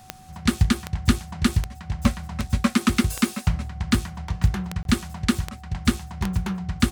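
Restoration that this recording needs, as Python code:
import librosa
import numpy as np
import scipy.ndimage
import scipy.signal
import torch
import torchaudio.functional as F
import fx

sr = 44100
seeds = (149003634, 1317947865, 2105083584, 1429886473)

y = fx.fix_declick_ar(x, sr, threshold=10.0)
y = fx.notch(y, sr, hz=750.0, q=30.0)
y = fx.fix_interpolate(y, sr, at_s=(4.83,), length_ms=22.0)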